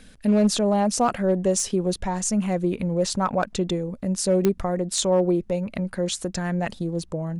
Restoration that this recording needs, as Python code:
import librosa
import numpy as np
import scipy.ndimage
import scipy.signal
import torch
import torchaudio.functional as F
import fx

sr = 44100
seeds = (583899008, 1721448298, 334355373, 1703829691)

y = fx.fix_declip(x, sr, threshold_db=-12.5)
y = fx.fix_declick_ar(y, sr, threshold=10.0)